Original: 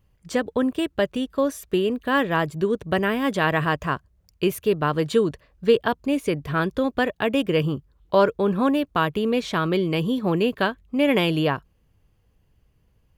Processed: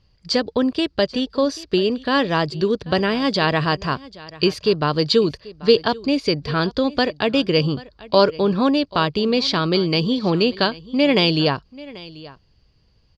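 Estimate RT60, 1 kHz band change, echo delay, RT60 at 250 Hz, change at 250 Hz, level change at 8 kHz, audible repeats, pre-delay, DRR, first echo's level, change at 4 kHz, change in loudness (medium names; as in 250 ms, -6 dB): no reverb, +2.0 dB, 787 ms, no reverb, +3.0 dB, no reading, 1, no reverb, no reverb, -20.0 dB, +10.0 dB, +3.5 dB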